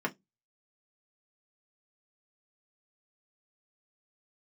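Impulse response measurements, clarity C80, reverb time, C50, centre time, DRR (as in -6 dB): 36.0 dB, 0.15 s, 26.0 dB, 6 ms, -0.5 dB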